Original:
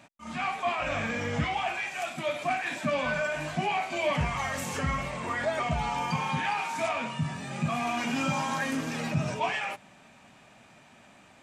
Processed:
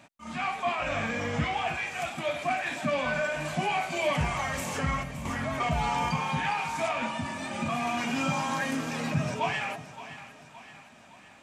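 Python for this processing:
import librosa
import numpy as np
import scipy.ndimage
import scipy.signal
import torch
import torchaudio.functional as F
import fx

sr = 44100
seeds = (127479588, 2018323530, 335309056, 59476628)

y = fx.high_shelf(x, sr, hz=8600.0, db=10.0, at=(3.45, 4.38))
y = fx.spec_box(y, sr, start_s=5.03, length_s=0.57, low_hz=310.0, high_hz=9400.0, gain_db=-12)
y = fx.comb(y, sr, ms=3.4, depth=0.85, at=(7.02, 7.68))
y = fx.echo_split(y, sr, split_hz=740.0, low_ms=318, high_ms=567, feedback_pct=52, wet_db=-13.5)
y = fx.env_flatten(y, sr, amount_pct=50, at=(5.25, 6.09))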